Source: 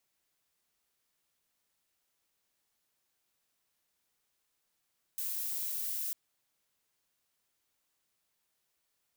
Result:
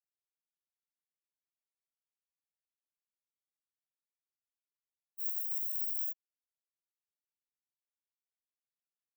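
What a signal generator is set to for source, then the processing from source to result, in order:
noise violet, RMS -36 dBFS 0.95 s
spectral contrast expander 4:1

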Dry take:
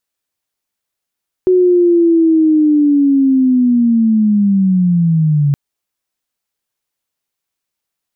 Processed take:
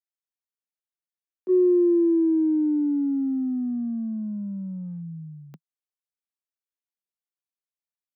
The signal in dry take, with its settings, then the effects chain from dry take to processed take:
sweep linear 370 Hz -> 140 Hz -6.5 dBFS -> -9 dBFS 4.07 s
gate -9 dBFS, range -22 dB; steep high-pass 160 Hz 72 dB/octave

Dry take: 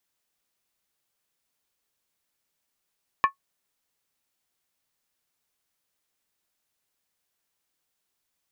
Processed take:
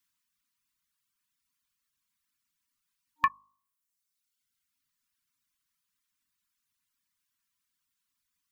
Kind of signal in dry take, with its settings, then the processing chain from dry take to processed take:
skin hit, lowest mode 1.1 kHz, decay 0.11 s, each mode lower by 8 dB, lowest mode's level -11.5 dB
FFT band-reject 300–920 Hz; de-hum 51.14 Hz, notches 23; reverb removal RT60 1.3 s

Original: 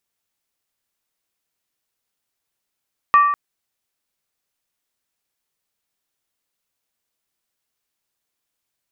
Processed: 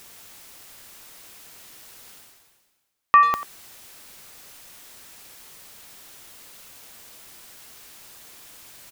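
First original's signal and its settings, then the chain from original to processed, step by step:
skin hit length 0.20 s, lowest mode 1.16 kHz, decay 0.99 s, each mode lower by 10.5 dB, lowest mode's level -7 dB
reverse; upward compressor, threshold -20 dBFS; reverse; speakerphone echo 90 ms, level -13 dB

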